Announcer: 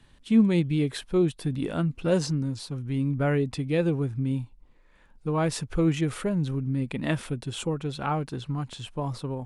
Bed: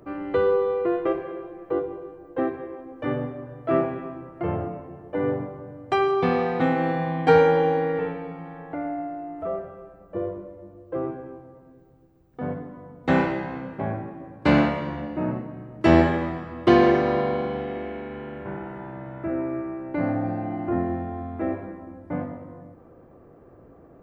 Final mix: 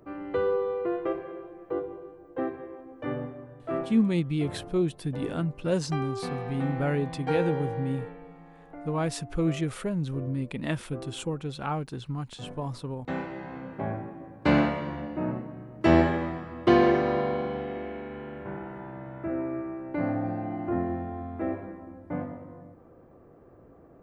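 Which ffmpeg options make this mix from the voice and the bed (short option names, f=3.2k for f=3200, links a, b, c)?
-filter_complex "[0:a]adelay=3600,volume=-3dB[a];[1:a]volume=3.5dB,afade=t=out:st=3.18:d=0.95:silence=0.446684,afade=t=in:st=13.28:d=0.49:silence=0.354813[b];[a][b]amix=inputs=2:normalize=0"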